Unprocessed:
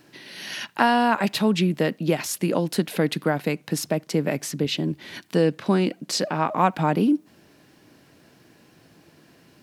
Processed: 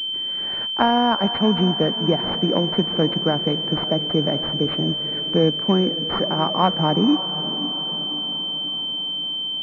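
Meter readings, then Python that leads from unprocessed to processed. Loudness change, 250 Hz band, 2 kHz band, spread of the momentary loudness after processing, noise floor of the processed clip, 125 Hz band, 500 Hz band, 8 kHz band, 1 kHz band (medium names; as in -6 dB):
+3.0 dB, +2.5 dB, -4.0 dB, 5 LU, -27 dBFS, +2.5 dB, +2.5 dB, under -20 dB, +1.5 dB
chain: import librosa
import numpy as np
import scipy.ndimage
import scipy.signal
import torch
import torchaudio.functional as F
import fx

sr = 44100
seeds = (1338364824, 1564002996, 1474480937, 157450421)

y = fx.echo_diffused(x, sr, ms=529, feedback_pct=58, wet_db=-12.5)
y = fx.vibrato(y, sr, rate_hz=3.1, depth_cents=14.0)
y = fx.pwm(y, sr, carrier_hz=3100.0)
y = F.gain(torch.from_numpy(y), 2.0).numpy()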